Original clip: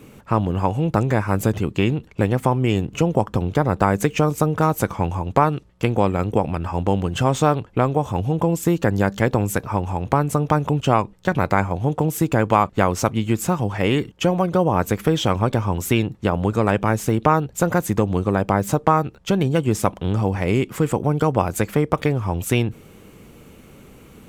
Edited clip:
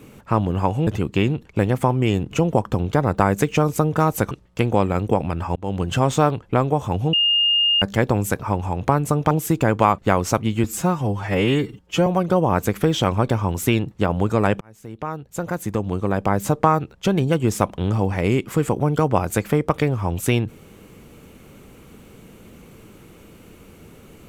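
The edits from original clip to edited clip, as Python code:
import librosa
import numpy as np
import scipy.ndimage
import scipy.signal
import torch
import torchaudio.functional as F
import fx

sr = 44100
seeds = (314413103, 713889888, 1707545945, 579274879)

y = fx.edit(x, sr, fx.cut(start_s=0.87, length_s=0.62),
    fx.cut(start_s=4.93, length_s=0.62),
    fx.fade_in_span(start_s=6.8, length_s=0.26),
    fx.bleep(start_s=8.37, length_s=0.69, hz=2830.0, db=-14.5),
    fx.cut(start_s=10.55, length_s=1.47),
    fx.stretch_span(start_s=13.35, length_s=0.95, factor=1.5),
    fx.fade_in_span(start_s=16.84, length_s=1.93), tone=tone)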